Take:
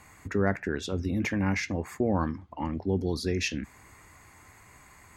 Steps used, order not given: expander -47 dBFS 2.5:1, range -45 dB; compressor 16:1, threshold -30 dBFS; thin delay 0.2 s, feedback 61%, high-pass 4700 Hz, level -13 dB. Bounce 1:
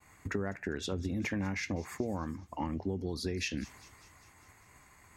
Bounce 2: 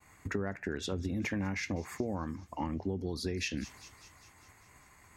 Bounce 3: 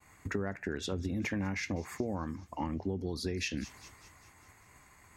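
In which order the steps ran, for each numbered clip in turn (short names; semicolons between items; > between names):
expander > compressor > thin delay; expander > thin delay > compressor; thin delay > expander > compressor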